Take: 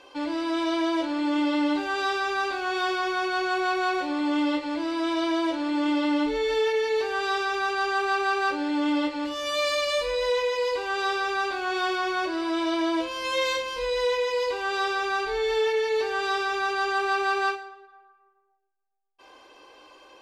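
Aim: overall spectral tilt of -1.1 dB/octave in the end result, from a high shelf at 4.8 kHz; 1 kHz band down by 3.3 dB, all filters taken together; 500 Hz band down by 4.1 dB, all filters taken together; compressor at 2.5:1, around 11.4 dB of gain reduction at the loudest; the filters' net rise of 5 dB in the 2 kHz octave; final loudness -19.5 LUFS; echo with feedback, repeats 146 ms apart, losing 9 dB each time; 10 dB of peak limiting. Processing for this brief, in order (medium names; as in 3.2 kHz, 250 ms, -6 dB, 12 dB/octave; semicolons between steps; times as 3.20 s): peaking EQ 500 Hz -4.5 dB; peaking EQ 1 kHz -5.5 dB; peaking EQ 2 kHz +8.5 dB; treble shelf 4.8 kHz +8 dB; compression 2.5:1, threshold -38 dBFS; peak limiter -34 dBFS; feedback delay 146 ms, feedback 35%, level -9 dB; trim +20 dB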